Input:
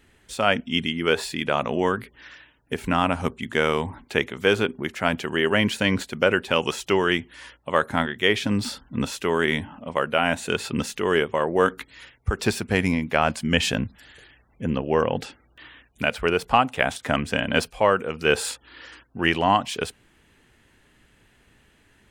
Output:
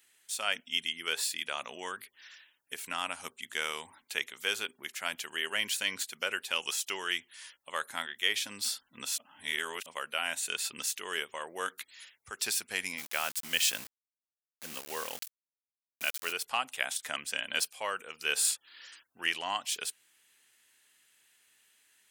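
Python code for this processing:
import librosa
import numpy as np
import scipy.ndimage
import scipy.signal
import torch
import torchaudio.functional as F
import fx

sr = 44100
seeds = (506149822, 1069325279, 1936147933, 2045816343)

y = fx.sample_gate(x, sr, floor_db=-30.5, at=(12.97, 16.31), fade=0.02)
y = fx.edit(y, sr, fx.reverse_span(start_s=9.18, length_s=0.68), tone=tone)
y = np.diff(y, prepend=0.0)
y = F.gain(torch.from_numpy(y), 2.5).numpy()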